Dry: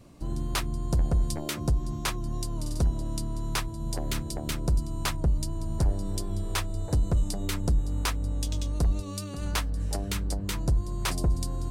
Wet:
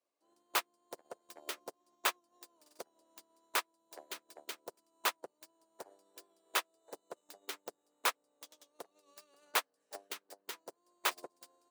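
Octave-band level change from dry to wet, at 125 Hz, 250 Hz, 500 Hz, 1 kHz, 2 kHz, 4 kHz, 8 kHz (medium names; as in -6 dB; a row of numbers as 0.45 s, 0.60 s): under -40 dB, -26.0 dB, -9.5 dB, -3.0 dB, -2.0 dB, -5.0 dB, -7.5 dB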